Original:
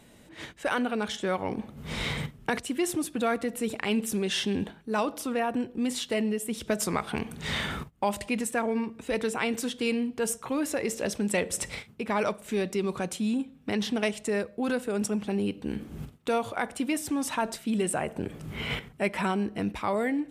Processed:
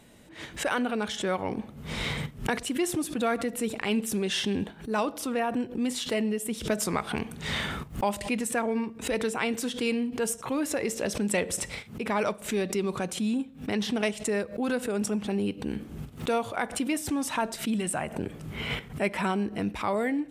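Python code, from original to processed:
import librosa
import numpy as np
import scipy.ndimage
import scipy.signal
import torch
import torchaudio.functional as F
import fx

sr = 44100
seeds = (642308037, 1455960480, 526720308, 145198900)

y = fx.peak_eq(x, sr, hz=430.0, db=-8.0, octaves=0.61, at=(17.75, 18.15))
y = fx.pre_swell(y, sr, db_per_s=150.0)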